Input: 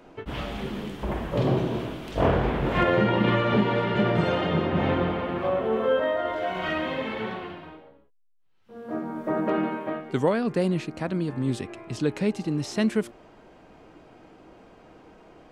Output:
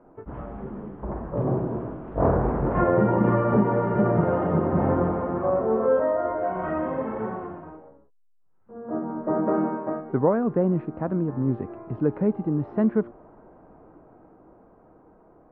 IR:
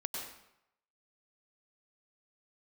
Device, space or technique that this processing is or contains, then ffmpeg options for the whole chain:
action camera in a waterproof case: -af "lowpass=f=1300:w=0.5412,lowpass=f=1300:w=1.3066,dynaudnorm=f=180:g=21:m=1.88,volume=0.708" -ar 22050 -c:a aac -b:a 48k

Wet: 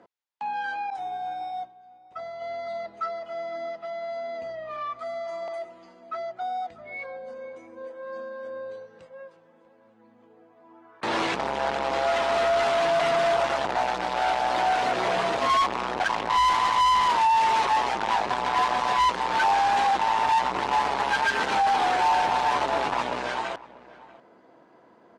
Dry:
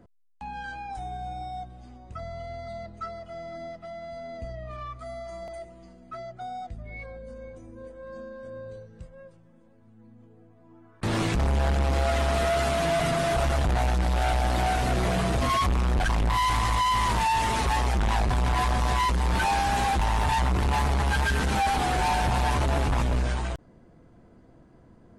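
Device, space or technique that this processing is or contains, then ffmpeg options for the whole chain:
intercom: -filter_complex "[0:a]asettb=1/sr,asplit=3[s0][s1][s2];[s0]atrim=end=0.904[s3];[s1]atrim=start=0.9:end=2.42,asetpts=PTS-STARTPTS,afade=t=in:d=0.004:c=qsin,afade=t=out:st=1.516:d=0.004:c=qsin,agate=range=0.0224:threshold=0.0251:ratio=3:detection=peak[s4];[s2]atrim=start=2.416[s5];[s3][s4]acrossfade=d=0.004:c1=hsin:c2=qsin[s6];[s6][s5]acrossfade=d=0.004:c1=qsin:c2=hsin,highpass=450,lowpass=4600,equalizer=f=920:t=o:w=0.3:g=4.5,asoftclip=type=tanh:threshold=0.0708,asplit=2[s7][s8];[s8]adelay=641.4,volume=0.112,highshelf=f=4000:g=-14.4[s9];[s7][s9]amix=inputs=2:normalize=0,volume=2"

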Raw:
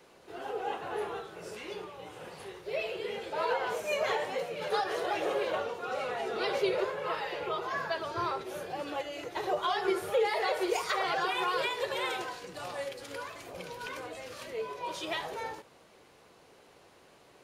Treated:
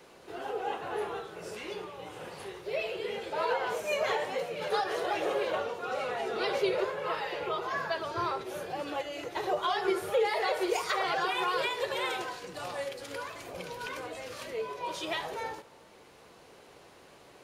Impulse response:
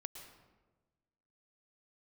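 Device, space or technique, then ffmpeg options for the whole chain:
ducked reverb: -filter_complex "[0:a]asplit=3[s0][s1][s2];[1:a]atrim=start_sample=2205[s3];[s1][s3]afir=irnorm=-1:irlink=0[s4];[s2]apad=whole_len=768799[s5];[s4][s5]sidechaincompress=threshold=0.00631:ratio=8:attack=16:release=854,volume=0.891[s6];[s0][s6]amix=inputs=2:normalize=0"

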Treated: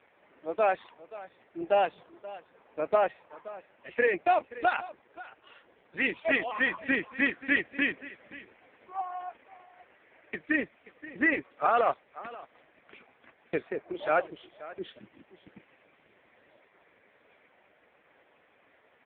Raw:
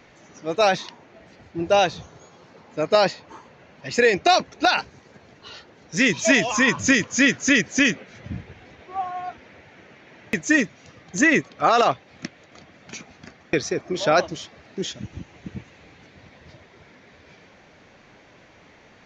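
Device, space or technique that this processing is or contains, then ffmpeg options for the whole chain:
satellite phone: -af "highpass=350,lowpass=3200,aecho=1:1:529:0.133,volume=0.531" -ar 8000 -c:a libopencore_amrnb -b:a 4750

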